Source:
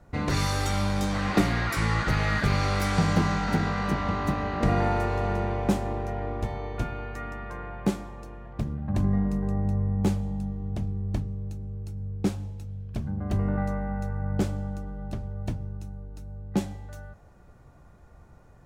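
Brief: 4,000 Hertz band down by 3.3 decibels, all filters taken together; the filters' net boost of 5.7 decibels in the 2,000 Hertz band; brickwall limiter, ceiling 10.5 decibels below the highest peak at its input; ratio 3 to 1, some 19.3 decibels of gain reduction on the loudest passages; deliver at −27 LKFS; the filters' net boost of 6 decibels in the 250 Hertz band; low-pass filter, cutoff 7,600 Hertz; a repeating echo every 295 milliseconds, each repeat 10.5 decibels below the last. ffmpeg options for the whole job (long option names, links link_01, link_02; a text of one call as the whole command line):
ffmpeg -i in.wav -af "lowpass=7600,equalizer=frequency=250:width_type=o:gain=8.5,equalizer=frequency=2000:width_type=o:gain=8,equalizer=frequency=4000:width_type=o:gain=-6.5,acompressor=threshold=-41dB:ratio=3,alimiter=level_in=8.5dB:limit=-24dB:level=0:latency=1,volume=-8.5dB,aecho=1:1:295|590|885:0.299|0.0896|0.0269,volume=14.5dB" out.wav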